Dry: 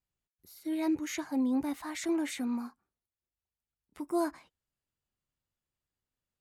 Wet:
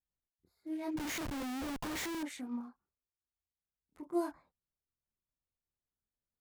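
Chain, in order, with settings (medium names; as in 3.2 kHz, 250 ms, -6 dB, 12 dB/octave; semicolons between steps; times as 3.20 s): local Wiener filter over 15 samples; chorus voices 4, 1 Hz, delay 26 ms, depth 3 ms; 0.97–2.23 s: Schmitt trigger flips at -48.5 dBFS; trim -3.5 dB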